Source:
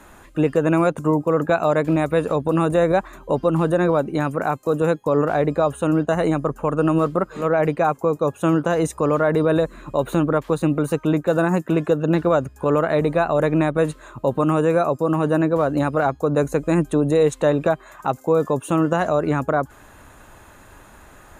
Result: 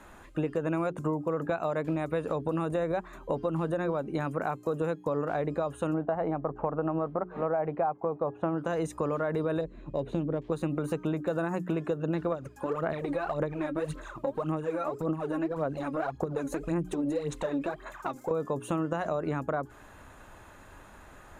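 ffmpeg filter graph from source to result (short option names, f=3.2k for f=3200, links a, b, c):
-filter_complex "[0:a]asettb=1/sr,asplit=3[a][b][c];[a]atrim=end=5.944[d];[b]atrim=start=5.94:end=8.58,asetpts=PTS-STARTPTS,afade=t=in:d=0.004:c=qsin,afade=t=out:st=2.636:d=0.004:c=qsin,lowpass=1.8k,equalizer=f=760:t=o:w=0.67:g=9.5[e];[c]atrim=start=8.576[f];[d][e]acrossfade=d=0.004:c1=hsin:c2=qsin[g];[g][f]acrossfade=d=0.004:c1=qsin:c2=hsin,asettb=1/sr,asplit=3[h][i][j];[h]atrim=end=9.614[k];[i]atrim=start=9.61:end=10.52,asetpts=PTS-STARTPTS,afade=t=in:d=0.004:c=qsin,afade=t=out:st=0.906:d=0.004:c=qsin,equalizer=f=1.3k:w=1.2:g=-15,adynamicsmooth=sensitivity=2.5:basefreq=3.3k[l];[j]atrim=start=10.516[m];[k][l]acrossfade=d=0.004:c1=hsin:c2=qsin[n];[n][m]acrossfade=d=0.004:c1=qsin:c2=hsin,asettb=1/sr,asplit=3[o][p][q];[o]atrim=end=12.324[r];[p]atrim=start=12.32:end=18.31,asetpts=PTS-STARTPTS,afade=t=in:d=0.004:c=qsin,afade=t=out:st=5.986:d=0.004:c=qsin,equalizer=f=73:w=1.4:g=-7.5,acompressor=threshold=-23dB:ratio=6:attack=3.2:release=140:knee=1:detection=peak,aphaser=in_gain=1:out_gain=1:delay=3.7:decay=0.69:speed=1.8:type=sinusoidal[s];[q]atrim=start=18.306[t];[r][s]acrossfade=d=0.004:c1=hsin:c2=qsin[u];[u][t]acrossfade=d=0.004:c1=qsin:c2=hsin,highshelf=f=6.9k:g=-7.5,bandreject=f=60:t=h:w=6,bandreject=f=120:t=h:w=6,bandreject=f=180:t=h:w=6,bandreject=f=240:t=h:w=6,bandreject=f=300:t=h:w=6,bandreject=f=360:t=h:w=6,bandreject=f=420:t=h:w=6,acompressor=threshold=-22dB:ratio=6,volume=-4.5dB"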